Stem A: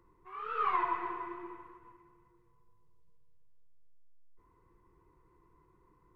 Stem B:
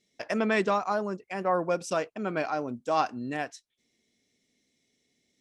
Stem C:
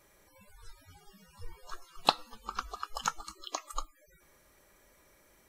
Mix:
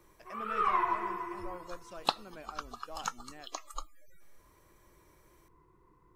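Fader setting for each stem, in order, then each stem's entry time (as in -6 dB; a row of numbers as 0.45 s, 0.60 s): +2.0 dB, -19.5 dB, -4.0 dB; 0.00 s, 0.00 s, 0.00 s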